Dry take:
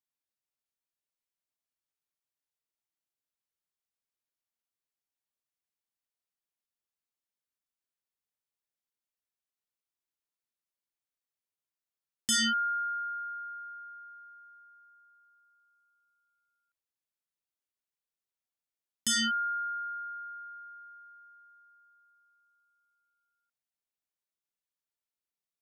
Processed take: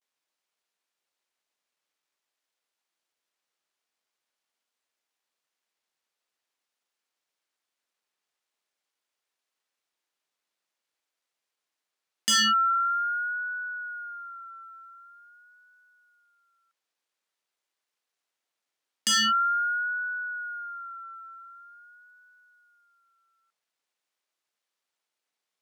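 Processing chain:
running median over 3 samples
high-shelf EQ 7,200 Hz −4.5 dB
in parallel at −1.5 dB: downward compressor, threshold −46 dBFS, peak gain reduction 17.5 dB
on the sum: Bessel high-pass filter 410 Hz, order 2
pitch vibrato 0.46 Hz 76 cents
level +6 dB

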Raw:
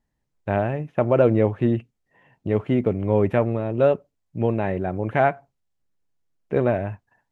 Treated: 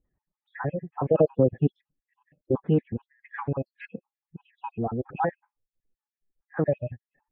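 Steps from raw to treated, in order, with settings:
time-frequency cells dropped at random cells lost 67%
Bessel low-pass filter 1,600 Hz, order 4
phase-vocoder pitch shift with formants kept +3.5 semitones

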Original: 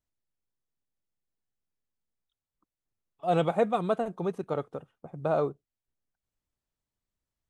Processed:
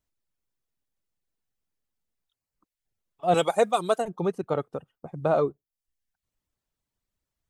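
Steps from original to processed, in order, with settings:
reverb reduction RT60 0.58 s
0:03.34–0:04.05: bass and treble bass −11 dB, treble +15 dB
level +4.5 dB

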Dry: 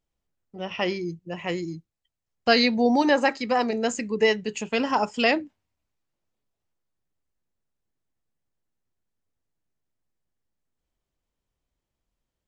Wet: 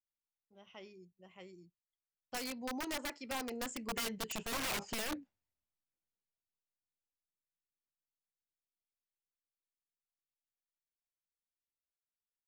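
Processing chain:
source passing by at 0:04.54, 20 m/s, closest 6 metres
brickwall limiter −22.5 dBFS, peak gain reduction 10.5 dB
wrap-around overflow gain 28 dB
level −4 dB

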